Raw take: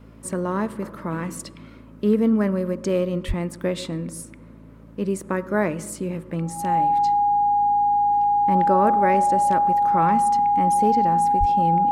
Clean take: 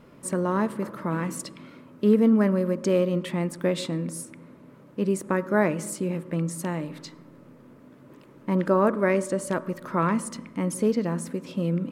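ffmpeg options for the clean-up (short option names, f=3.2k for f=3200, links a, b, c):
-filter_complex "[0:a]bandreject=f=54.8:t=h:w=4,bandreject=f=109.6:t=h:w=4,bandreject=f=164.4:t=h:w=4,bandreject=f=219.2:t=h:w=4,bandreject=f=274:t=h:w=4,bandreject=f=820:w=30,asplit=3[a][b][c];[a]afade=t=out:st=3.27:d=0.02[d];[b]highpass=f=140:w=0.5412,highpass=f=140:w=1.3066,afade=t=in:st=3.27:d=0.02,afade=t=out:st=3.39:d=0.02[e];[c]afade=t=in:st=3.39:d=0.02[f];[d][e][f]amix=inputs=3:normalize=0,asplit=3[g][h][i];[g]afade=t=out:st=11.39:d=0.02[j];[h]highpass=f=140:w=0.5412,highpass=f=140:w=1.3066,afade=t=in:st=11.39:d=0.02,afade=t=out:st=11.51:d=0.02[k];[i]afade=t=in:st=11.51:d=0.02[l];[j][k][l]amix=inputs=3:normalize=0"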